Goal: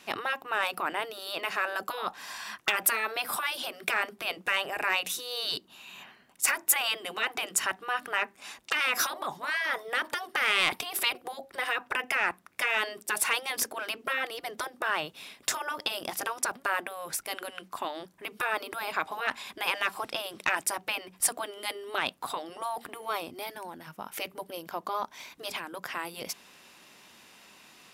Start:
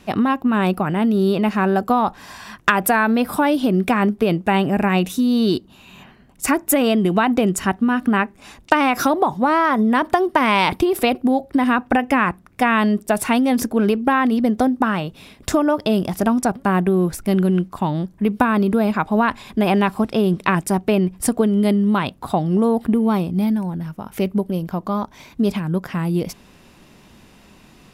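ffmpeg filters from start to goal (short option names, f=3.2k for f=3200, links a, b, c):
-af "afftfilt=real='re*lt(hypot(re,im),0.501)':imag='im*lt(hypot(re,im),0.501)':win_size=1024:overlap=0.75,highpass=f=1.3k:p=1,asoftclip=type=tanh:threshold=-11.5dB"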